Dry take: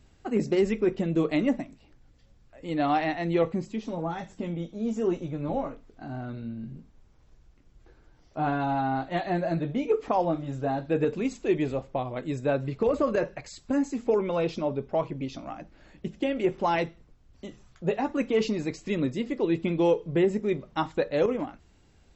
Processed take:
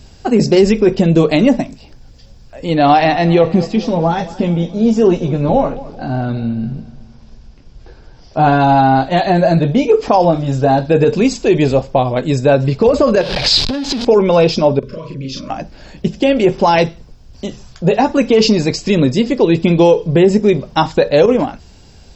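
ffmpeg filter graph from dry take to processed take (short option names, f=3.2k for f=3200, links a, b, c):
-filter_complex "[0:a]asettb=1/sr,asplit=3[a][b][c];[a]atrim=end=2.664[d];[b]atrim=start=2.66:end=8.38,asetpts=PTS-STARTPTS,afade=t=in:d=0.004:c=qsin,afade=t=out:st=5.716:d=0.004:c=qsin,lowpass=5.4k,aecho=1:1:216|432|648|864:0.126|0.0629|0.0315|0.0157,atrim=end_sample=252252[e];[c]atrim=start=8.376[f];[d][e]acrossfade=d=0.004:c1=hsin:c2=qsin[g];[g][f]acrossfade=d=0.004:c1=qsin:c2=hsin,asettb=1/sr,asplit=3[h][i][j];[h]atrim=end=13.214[k];[i]atrim=start=13.21:end=14.05,asetpts=PTS-STARTPTS,afade=t=in:d=0.004:c=qsin,afade=t=out:st=0.836:d=0.004:c=qsin,aeval=exprs='val(0)+0.5*0.0266*sgn(val(0))':c=same,acompressor=threshold=-33dB:ratio=8:attack=3.2:release=140:knee=1:detection=peak,lowpass=f=3.8k:t=q:w=2.9[l];[j]atrim=start=14.046[m];[k][l]acrossfade=d=0.004:c1=hsin:c2=qsin[n];[n][m]acrossfade=d=0.004:c1=qsin:c2=hsin,asettb=1/sr,asplit=3[o][p][q];[o]atrim=end=14.794[r];[p]atrim=start=14.79:end=15.5,asetpts=PTS-STARTPTS,afade=t=in:d=0.004:c=qsin,afade=t=out:st=0.706:d=0.004:c=qsin,acompressor=threshold=-43dB:ratio=4:attack=3.2:release=140:knee=1:detection=peak,asuperstop=centerf=780:order=20:qfactor=2.2,asplit=2[s][t];[t]adelay=37,volume=-2dB[u];[s][u]amix=inputs=2:normalize=0,atrim=end_sample=31311[v];[q]atrim=start=15.496[w];[r][v]acrossfade=d=0.004:c1=hsin:c2=qsin[x];[x][w]acrossfade=d=0.004:c1=qsin:c2=hsin,equalizer=f=315:t=o:w=0.33:g=-6,equalizer=f=1.25k:t=o:w=0.33:g=-6,equalizer=f=2k:t=o:w=0.33:g=-6,equalizer=f=5k:t=o:w=0.33:g=10,alimiter=level_in=19dB:limit=-1dB:release=50:level=0:latency=1,volume=-1dB"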